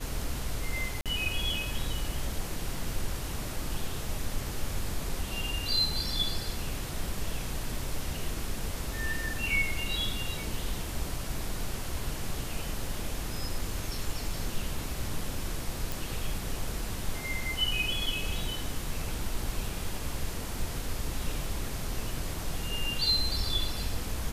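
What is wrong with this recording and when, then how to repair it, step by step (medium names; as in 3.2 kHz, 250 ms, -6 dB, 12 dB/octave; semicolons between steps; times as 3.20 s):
1.01–1.06 s: dropout 47 ms
15.92 s: pop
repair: de-click; interpolate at 1.01 s, 47 ms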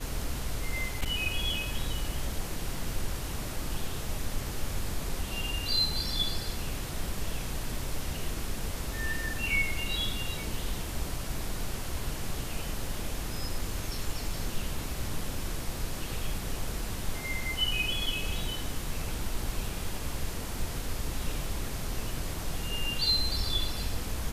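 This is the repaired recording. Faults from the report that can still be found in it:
nothing left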